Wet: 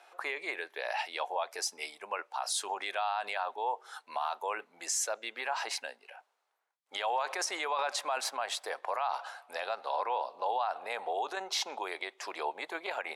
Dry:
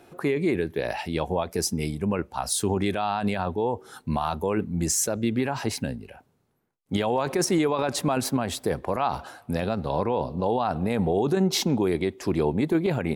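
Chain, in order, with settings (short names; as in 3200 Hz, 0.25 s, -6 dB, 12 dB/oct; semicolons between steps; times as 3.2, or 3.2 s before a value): HPF 690 Hz 24 dB/oct; air absorption 51 m; limiter -22 dBFS, peak gain reduction 7 dB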